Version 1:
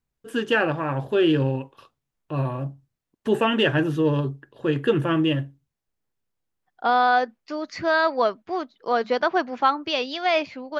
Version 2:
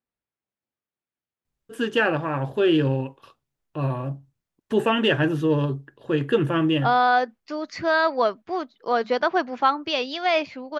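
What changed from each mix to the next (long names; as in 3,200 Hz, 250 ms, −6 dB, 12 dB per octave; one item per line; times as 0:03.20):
first voice: entry +1.45 s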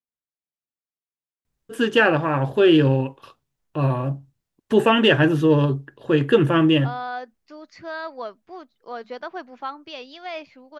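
first voice +4.5 dB
second voice −11.5 dB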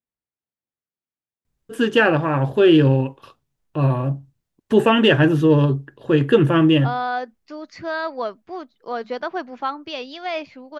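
second voice +5.5 dB
master: add low-shelf EQ 370 Hz +3.5 dB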